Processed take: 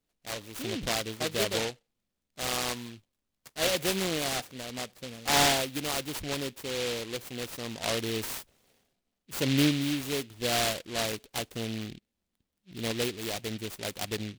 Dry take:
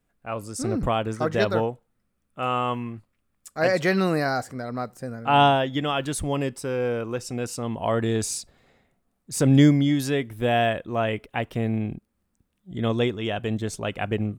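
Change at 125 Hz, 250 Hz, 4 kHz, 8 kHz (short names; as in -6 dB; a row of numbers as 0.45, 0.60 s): -11.5, -9.0, +2.5, +2.0 dB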